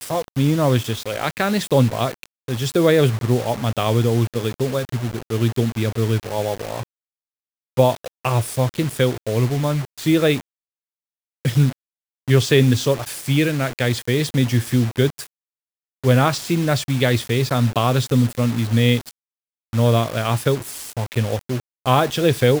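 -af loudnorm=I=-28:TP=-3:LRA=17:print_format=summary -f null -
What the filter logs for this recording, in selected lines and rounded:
Input Integrated:    -20.0 LUFS
Input True Peak:      -1.8 dBTP
Input LRA:             3.4 LU
Input Threshold:     -30.2 LUFS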